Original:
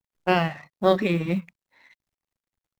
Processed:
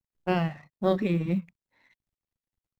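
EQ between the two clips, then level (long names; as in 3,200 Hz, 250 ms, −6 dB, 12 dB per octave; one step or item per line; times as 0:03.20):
low-shelf EQ 360 Hz +10 dB
−9.0 dB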